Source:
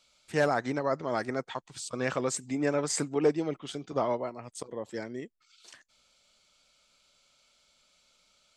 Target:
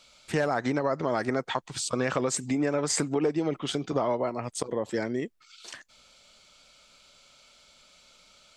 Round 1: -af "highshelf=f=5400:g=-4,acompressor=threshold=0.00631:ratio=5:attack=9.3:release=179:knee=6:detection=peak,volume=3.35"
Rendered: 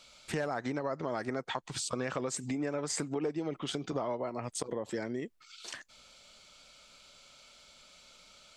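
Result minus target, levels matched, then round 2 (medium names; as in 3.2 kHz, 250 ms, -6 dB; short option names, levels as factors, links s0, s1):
compression: peak gain reduction +7.5 dB
-af "highshelf=f=5400:g=-4,acompressor=threshold=0.0188:ratio=5:attack=9.3:release=179:knee=6:detection=peak,volume=3.35"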